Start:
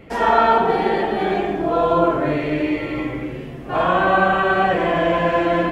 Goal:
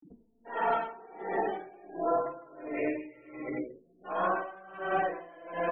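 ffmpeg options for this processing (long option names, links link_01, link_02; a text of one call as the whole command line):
ffmpeg -i in.wav -filter_complex "[0:a]aeval=exprs='(tanh(4.47*val(0)+0.25)-tanh(0.25))/4.47':channel_layout=same,acompressor=threshold=-21dB:ratio=5,afftfilt=real='re*gte(hypot(re,im),0.0447)':imag='im*gte(hypot(re,im),0.0447)':win_size=1024:overlap=0.75,acrossover=split=210 5300:gain=0.178 1 0.251[link_01][link_02][link_03];[link_01][link_02][link_03]amix=inputs=3:normalize=0,bandreject=frequency=3900:width=9.8,asplit=2[link_04][link_05];[link_05]adelay=16,volume=-10dB[link_06];[link_04][link_06]amix=inputs=2:normalize=0,acrossover=split=220[link_07][link_08];[link_08]adelay=350[link_09];[link_07][link_09]amix=inputs=2:normalize=0,acompressor=mode=upward:threshold=-35dB:ratio=2.5,bandreject=frequency=60:width_type=h:width=6,bandreject=frequency=120:width_type=h:width=6,aeval=exprs='val(0)*pow(10,-24*(0.5-0.5*cos(2*PI*1.4*n/s))/20)':channel_layout=same,volume=-3dB" out.wav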